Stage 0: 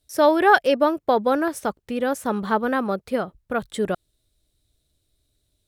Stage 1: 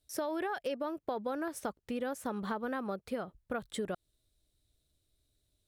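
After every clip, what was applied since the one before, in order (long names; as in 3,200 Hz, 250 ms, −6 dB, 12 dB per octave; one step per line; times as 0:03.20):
brickwall limiter −12 dBFS, peak gain reduction 9 dB
downward compressor, threshold −26 dBFS, peak gain reduction 9.5 dB
level −6.5 dB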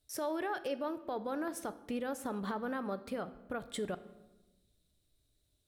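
brickwall limiter −28.5 dBFS, peak gain reduction 5 dB
rectangular room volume 530 cubic metres, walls mixed, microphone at 0.34 metres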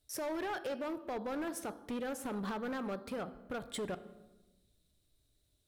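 gain into a clipping stage and back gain 35 dB
level +1 dB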